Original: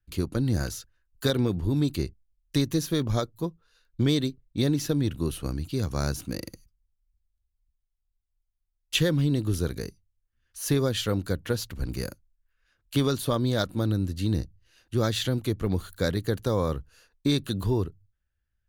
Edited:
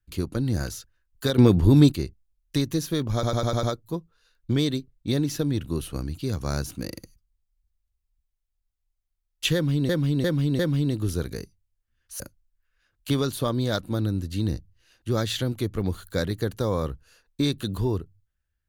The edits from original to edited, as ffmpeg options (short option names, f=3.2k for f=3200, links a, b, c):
-filter_complex "[0:a]asplit=12[a][b][c][d][e][f][g][h][i][j][k][l];[a]atrim=end=1.382[m];[b]atrim=start=1.378:end=1.922,asetpts=PTS-STARTPTS,volume=9.5dB[n];[c]atrim=start=1.918:end=3.232[o];[d]atrim=start=3.128:end=3.232[p];[e]atrim=start=3.128:end=3.232[q];[f]atrim=start=3.128:end=3.232[r];[g]atrim=start=3.128:end=3.232[s];[h]atrim=start=3.128:end=9.392[t];[i]atrim=start=9.038:end=9.392[u];[j]atrim=start=9.038:end=9.392[v];[k]atrim=start=9.038:end=10.652[w];[l]atrim=start=12.058[x];[m][n]acrossfade=d=0.004:c1=hsin:c2=hsin[y];[y][o]acrossfade=d=0.004:c1=hsin:c2=hsin[z];[z][p]acrossfade=d=0.004:c1=hsin:c2=hsin[aa];[aa][q]acrossfade=d=0.004:c1=hsin:c2=hsin[ab];[ab][r]acrossfade=d=0.004:c1=hsin:c2=hsin[ac];[ac][s]acrossfade=d=0.004:c1=hsin:c2=hsin[ad];[ad][t]acrossfade=d=0.004:c1=hsin:c2=hsin[ae];[ae][u]acrossfade=d=0.004:c1=hsin:c2=hsin[af];[af][v]acrossfade=d=0.004:c1=hsin:c2=hsin[ag];[ag][w]acrossfade=d=0.004:c1=hsin:c2=hsin[ah];[ah][x]acrossfade=d=0.004:c1=hsin:c2=hsin"